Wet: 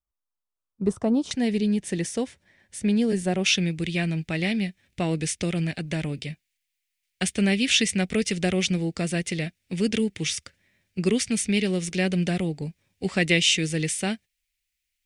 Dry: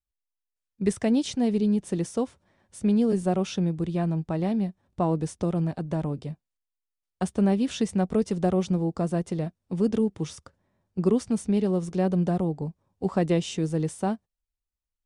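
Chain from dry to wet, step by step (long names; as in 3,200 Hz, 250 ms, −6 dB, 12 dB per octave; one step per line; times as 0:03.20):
high shelf with overshoot 1,500 Hz −6 dB, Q 3, from 0:01.31 +7 dB, from 0:03.46 +13 dB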